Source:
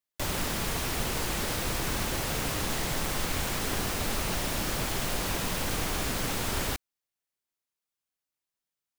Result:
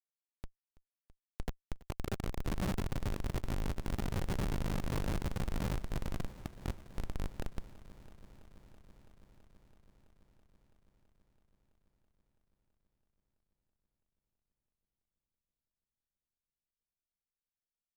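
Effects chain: Doppler pass-by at 2.22 s, 12 m/s, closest 9.3 m; peaking EQ 110 Hz -5 dB 0.35 oct; comb 5.4 ms, depth 69%; peak limiter -24 dBFS, peak gain reduction 7 dB; granular stretch 2×, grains 40 ms; high-pass sweep 590 Hz -> 110 Hz, 1.69–3.04 s; Schmitt trigger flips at -26.5 dBFS; multi-head delay 330 ms, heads first and second, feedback 72%, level -21.5 dB; trim +6.5 dB

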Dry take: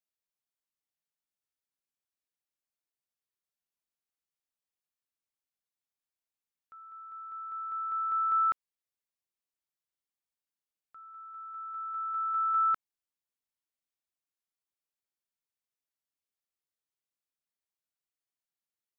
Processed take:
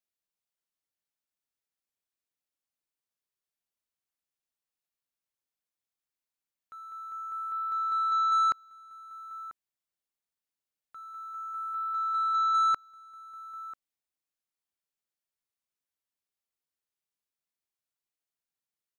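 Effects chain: 7.96–8.49 s: hum notches 60/120/180/240 Hz; echo from a far wall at 170 m, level -18 dB; waveshaping leveller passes 1; trim +1.5 dB

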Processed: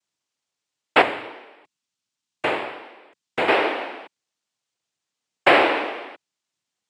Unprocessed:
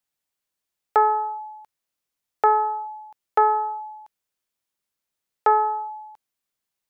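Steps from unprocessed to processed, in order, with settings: 1.01–3.48 s: peaking EQ 820 Hz -13.5 dB 1.2 oct; noise-vocoded speech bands 4; trim +3.5 dB

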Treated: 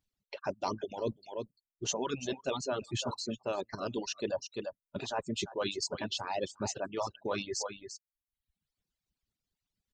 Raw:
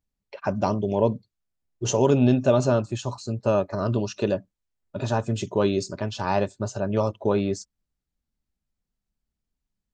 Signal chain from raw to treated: peaking EQ 3.7 kHz +7.5 dB 1.5 oct; on a send: delay 344 ms -13.5 dB; on the sum: reverb removal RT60 0.58 s; harmonic-percussive split harmonic -17 dB; reverse; compression 4:1, threshold -36 dBFS, peak gain reduction 15 dB; reverse; reverb removal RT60 0.83 s; trim +3.5 dB

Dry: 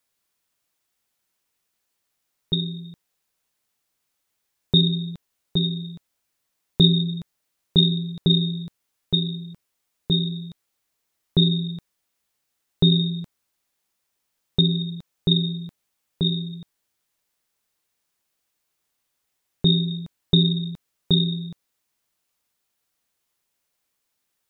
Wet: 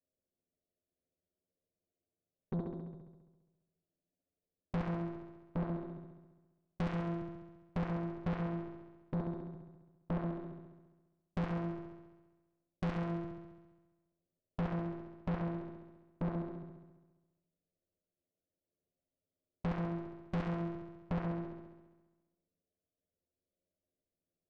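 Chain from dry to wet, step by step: elliptic low-pass 640 Hz, stop band 40 dB; touch-sensitive flanger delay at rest 11.3 ms, full sweep at -18.5 dBFS; valve stage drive 33 dB, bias 0.6; flutter echo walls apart 11.6 m, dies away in 1.2 s; trim +1 dB

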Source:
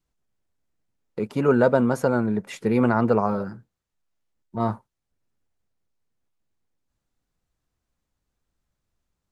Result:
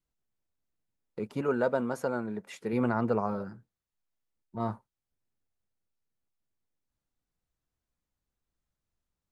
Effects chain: 1.41–2.73 s: bass shelf 170 Hz -11 dB; trim -8 dB

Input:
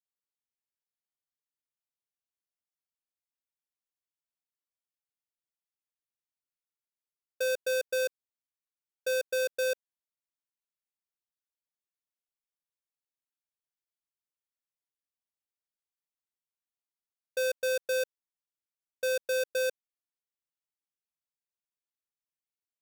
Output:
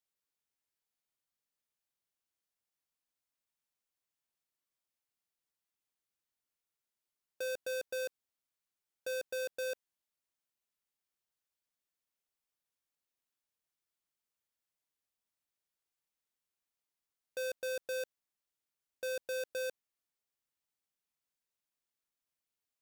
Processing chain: saturation -39 dBFS, distortion -21 dB; trim +3 dB

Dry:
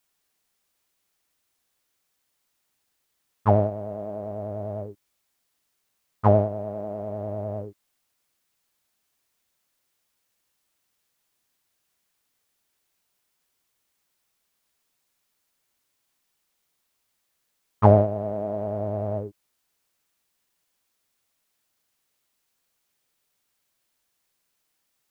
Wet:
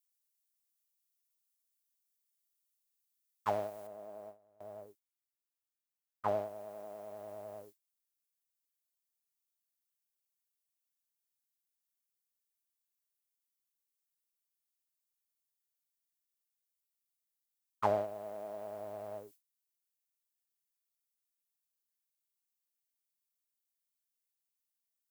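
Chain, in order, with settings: treble shelf 2.1 kHz +3 dB, from 3.87 s -8.5 dB, from 6.28 s -2 dB; gate with hold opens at -24 dBFS; differentiator; trim +7.5 dB

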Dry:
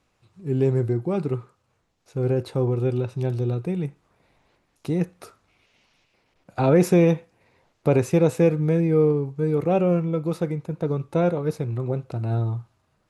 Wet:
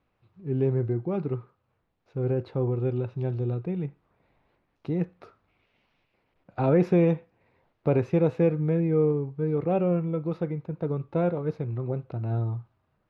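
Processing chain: distance through air 290 m; trim -3.5 dB

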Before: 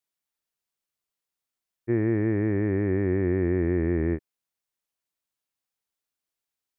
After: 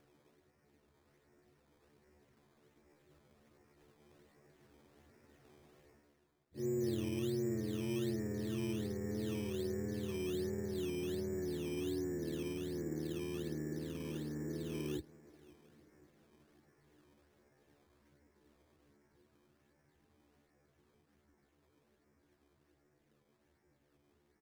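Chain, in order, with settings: spectral levelling over time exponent 0.6; Doppler pass-by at 2.58 s, 10 m/s, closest 4.8 m; granular stretch 2×, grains 55 ms; reverse; compression 6:1, threshold -53 dBFS, peak gain reduction 28 dB; reverse; plain phase-vocoder stretch 1.8×; treble shelf 2.3 kHz -11 dB; on a send: feedback delay 533 ms, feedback 56%, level -22 dB; on the sum: decimation with a swept rate 11×, swing 100% 1.3 Hz; trim +18 dB

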